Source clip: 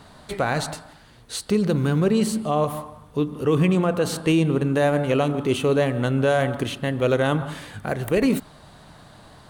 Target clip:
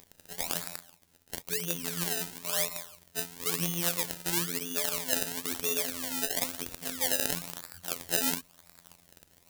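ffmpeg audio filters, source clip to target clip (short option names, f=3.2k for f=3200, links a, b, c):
-af "afftfilt=real='hypot(re,im)*cos(PI*b)':imag='0':win_size=2048:overlap=0.75,acrusher=samples=27:mix=1:aa=0.000001:lfo=1:lforange=27:lforate=1,crystalizer=i=8.5:c=0,volume=-15dB"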